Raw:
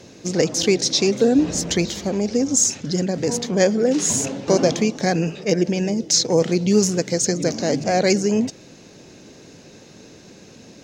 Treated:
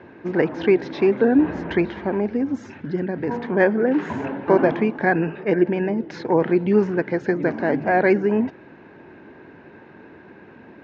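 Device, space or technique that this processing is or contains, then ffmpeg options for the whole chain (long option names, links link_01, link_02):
bass cabinet: -filter_complex "[0:a]highpass=62,equalizer=frequency=120:width_type=q:width=4:gain=-6,equalizer=frequency=180:width_type=q:width=4:gain=-4,equalizer=frequency=360:width_type=q:width=4:gain=4,equalizer=frequency=510:width_type=q:width=4:gain=-4,equalizer=frequency=930:width_type=q:width=4:gain=9,equalizer=frequency=1600:width_type=q:width=4:gain=9,lowpass=frequency=2300:width=0.5412,lowpass=frequency=2300:width=1.3066,asettb=1/sr,asplit=3[link_01][link_02][link_03];[link_01]atrim=end=2.274[link_04];[link_02]atrim=start=2.27:end=3.31,asetpts=PTS-STARTPTS,afade=type=in:duration=0.004:curve=qsin,afade=type=out:start_time=1.036:duration=0.004:curve=qsin,equalizer=frequency=910:width_type=o:width=2.5:gain=-5.5[link_05];[link_03]atrim=start=3.306[link_06];[link_04][link_05]acrossfade=duration=0.004:curve1=hsin:curve2=qsin[link_07];[link_07][link_06]acrossfade=duration=0.004:curve1=qsin:curve2=hsin"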